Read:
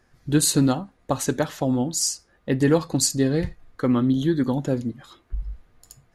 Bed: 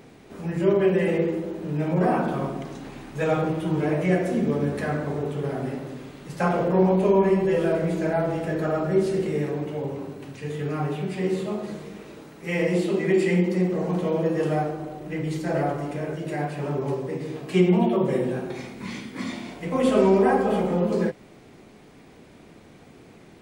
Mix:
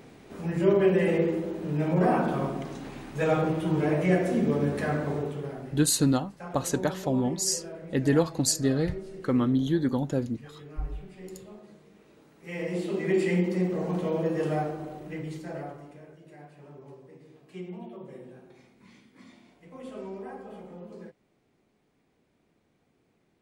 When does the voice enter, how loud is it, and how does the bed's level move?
5.45 s, -4.0 dB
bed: 5.15 s -1.5 dB
5.98 s -18 dB
11.82 s -18 dB
13.14 s -4 dB
14.97 s -4 dB
16.16 s -21 dB

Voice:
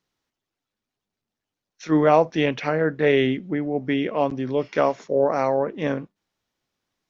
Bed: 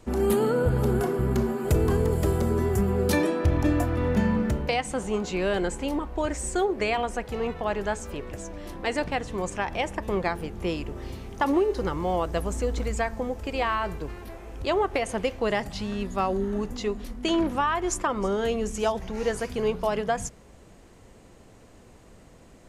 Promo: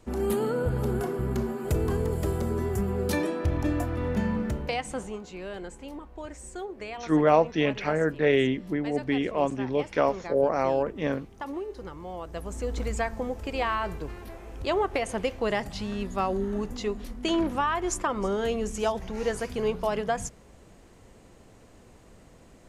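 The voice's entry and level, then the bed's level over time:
5.20 s, -3.5 dB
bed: 5 s -4 dB
5.21 s -12 dB
12.15 s -12 dB
12.83 s -1.5 dB

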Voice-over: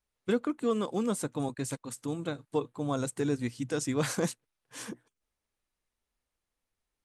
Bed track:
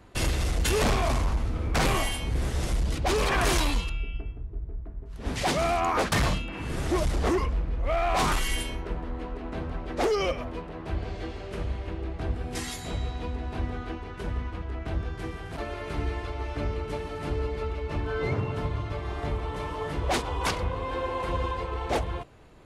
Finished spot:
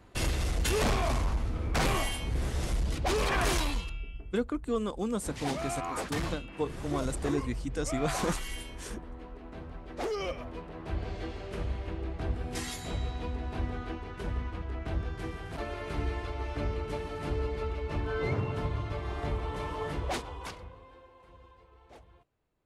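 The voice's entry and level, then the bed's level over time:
4.05 s, -2.0 dB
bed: 3.42 s -3.5 dB
4.36 s -10 dB
9.81 s -10 dB
11.07 s -2.5 dB
19.91 s -2.5 dB
21.12 s -26.5 dB

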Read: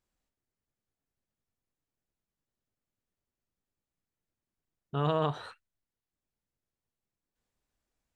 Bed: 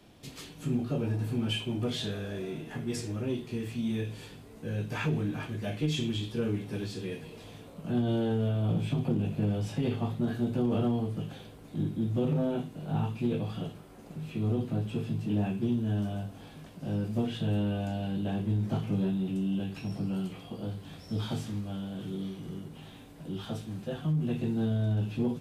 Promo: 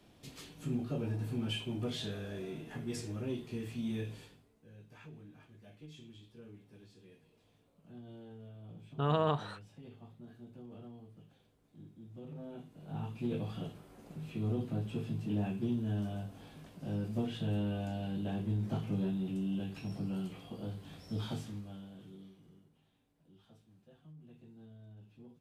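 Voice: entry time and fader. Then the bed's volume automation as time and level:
4.05 s, -1.5 dB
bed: 4.15 s -5.5 dB
4.58 s -22.5 dB
12.03 s -22.5 dB
13.37 s -5 dB
21.29 s -5 dB
22.9 s -26 dB

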